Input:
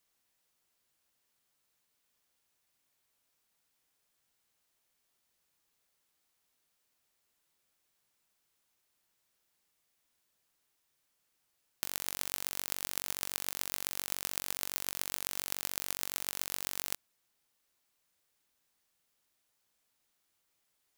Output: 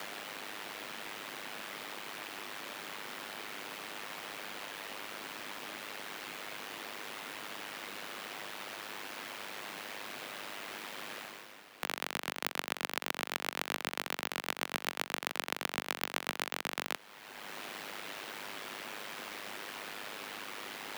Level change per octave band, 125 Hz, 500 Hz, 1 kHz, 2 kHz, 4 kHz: +2.0, +11.0, +11.0, +10.5, +5.0 dB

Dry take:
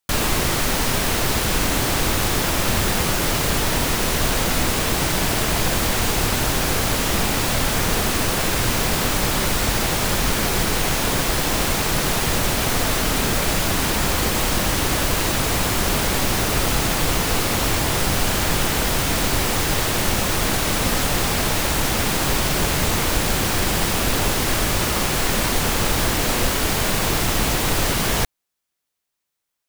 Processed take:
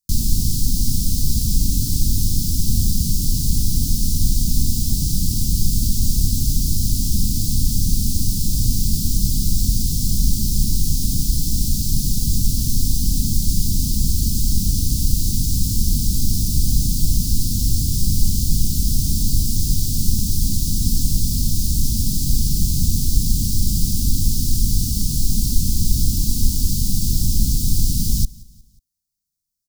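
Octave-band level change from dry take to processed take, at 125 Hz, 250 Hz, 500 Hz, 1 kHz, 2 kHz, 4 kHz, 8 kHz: +4.5 dB, -0.5 dB, -24.5 dB, under -40 dB, under -30 dB, -5.5 dB, -0.5 dB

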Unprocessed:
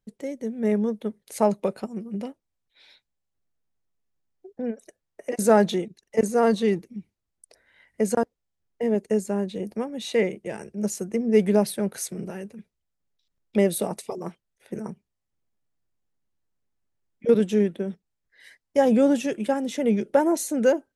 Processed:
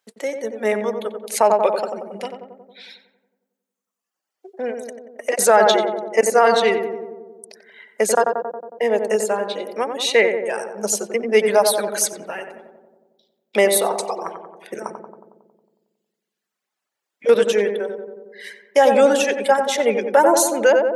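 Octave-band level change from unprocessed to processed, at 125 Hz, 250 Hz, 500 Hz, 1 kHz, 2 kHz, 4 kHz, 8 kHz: n/a, -4.5 dB, +7.0 dB, +11.0 dB, +13.0 dB, +13.0 dB, +11.5 dB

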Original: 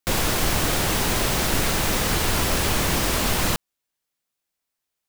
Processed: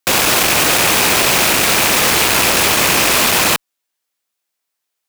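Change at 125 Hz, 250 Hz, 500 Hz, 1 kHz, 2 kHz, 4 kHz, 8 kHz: -1.0, +4.5, +8.0, +10.0, +12.5, +11.5, +11.5 dB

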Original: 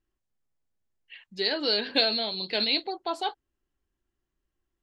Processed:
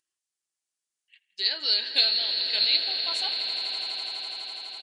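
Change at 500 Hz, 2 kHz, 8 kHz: -12.5 dB, -0.5 dB, n/a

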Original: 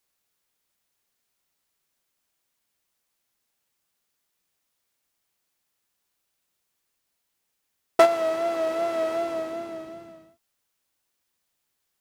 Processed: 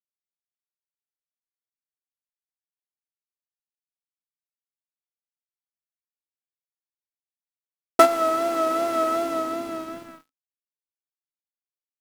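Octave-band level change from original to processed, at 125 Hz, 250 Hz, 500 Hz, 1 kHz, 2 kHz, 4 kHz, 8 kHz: n/a, +5.0 dB, 0.0 dB, +5.0 dB, +1.0 dB, +3.0 dB, +6.5 dB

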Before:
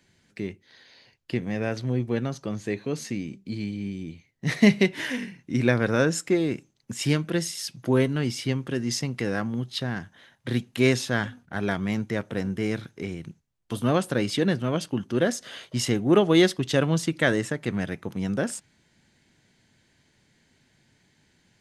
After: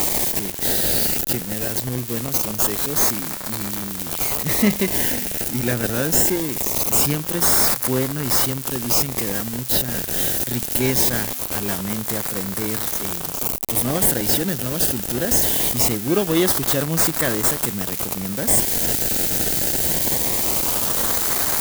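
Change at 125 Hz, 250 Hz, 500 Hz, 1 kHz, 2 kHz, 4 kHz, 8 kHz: +1.0, 0.0, +0.5, +7.0, +1.5, +8.0, +17.0 dB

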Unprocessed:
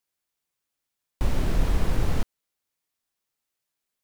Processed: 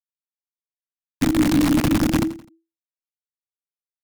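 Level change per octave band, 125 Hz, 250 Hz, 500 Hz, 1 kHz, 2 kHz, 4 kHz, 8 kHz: +3.0 dB, +17.5 dB, +7.5 dB, +7.5 dB, +9.5 dB, +10.5 dB, n/a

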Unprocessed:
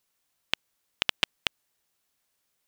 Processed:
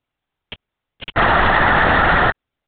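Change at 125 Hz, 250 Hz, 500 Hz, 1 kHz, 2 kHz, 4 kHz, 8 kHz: +30.0 dB, +26.5 dB, +27.5 dB, +29.0 dB, +20.5 dB, +3.5 dB, under -30 dB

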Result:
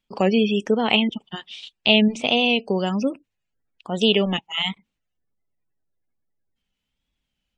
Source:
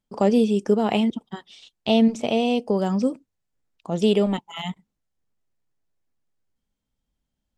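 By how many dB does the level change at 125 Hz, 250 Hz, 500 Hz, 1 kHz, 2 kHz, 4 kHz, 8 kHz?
0.0, -1.0, -0.5, +1.0, +11.5, +11.0, -0.5 dB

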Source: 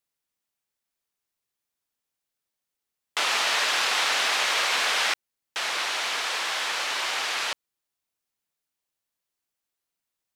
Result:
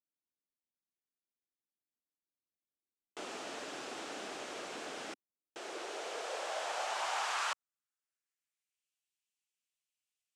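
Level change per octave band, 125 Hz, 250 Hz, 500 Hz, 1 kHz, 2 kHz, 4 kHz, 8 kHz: n/a, -1.5 dB, -5.5 dB, -10.5 dB, -17.5 dB, -19.0 dB, -15.5 dB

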